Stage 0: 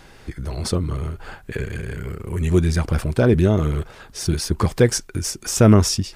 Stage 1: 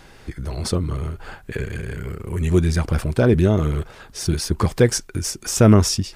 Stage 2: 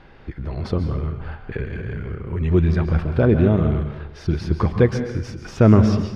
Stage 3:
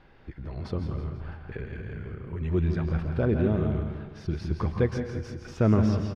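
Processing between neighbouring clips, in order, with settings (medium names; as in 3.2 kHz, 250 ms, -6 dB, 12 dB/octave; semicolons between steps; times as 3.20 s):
no audible change
distance through air 310 m; plate-style reverb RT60 0.81 s, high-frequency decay 0.8×, pre-delay 120 ms, DRR 7.5 dB
feedback delay 165 ms, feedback 50%, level -10 dB; trim -9 dB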